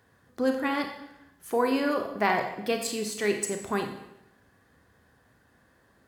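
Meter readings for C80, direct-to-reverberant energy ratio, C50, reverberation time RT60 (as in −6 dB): 9.5 dB, 4.5 dB, 7.0 dB, 0.85 s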